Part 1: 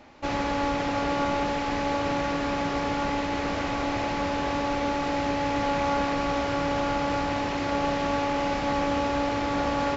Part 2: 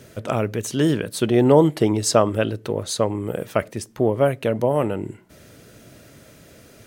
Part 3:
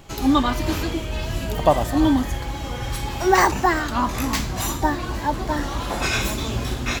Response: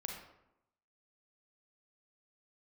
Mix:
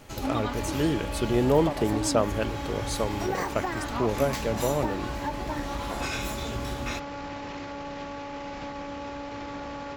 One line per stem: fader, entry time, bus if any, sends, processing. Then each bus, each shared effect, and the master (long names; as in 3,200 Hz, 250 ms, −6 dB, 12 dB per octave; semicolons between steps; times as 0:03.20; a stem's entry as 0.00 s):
−3.5 dB, 0.00 s, no send, notch filter 700 Hz, Q 12; brickwall limiter −25 dBFS, peak gain reduction 10 dB
−7.5 dB, 0.00 s, no send, no processing
−7.0 dB, 0.00 s, no send, downward compressor, threshold −21 dBFS, peak gain reduction 10.5 dB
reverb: not used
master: no processing